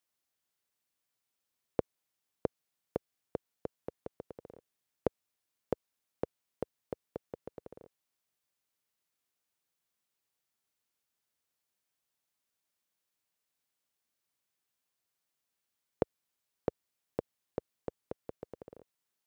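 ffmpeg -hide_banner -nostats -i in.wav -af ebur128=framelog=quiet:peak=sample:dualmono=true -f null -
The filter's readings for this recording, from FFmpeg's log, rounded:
Integrated loudness:
  I:         -40.4 LUFS
  Threshold: -50.8 LUFS
Loudness range:
  LRA:         6.8 LU
  Threshold: -62.5 LUFS
  LRA low:   -47.8 LUFS
  LRA high:  -41.0 LUFS
Sample peak:
  Peak:      -13.1 dBFS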